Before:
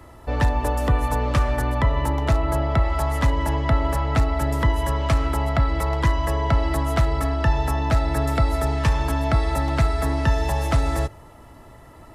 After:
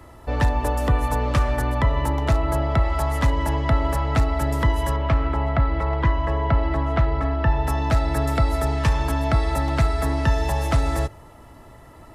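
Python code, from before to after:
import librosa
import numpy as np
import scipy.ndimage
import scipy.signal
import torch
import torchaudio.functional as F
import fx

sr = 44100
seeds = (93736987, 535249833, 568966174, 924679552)

y = fx.lowpass(x, sr, hz=2600.0, slope=12, at=(4.96, 7.67))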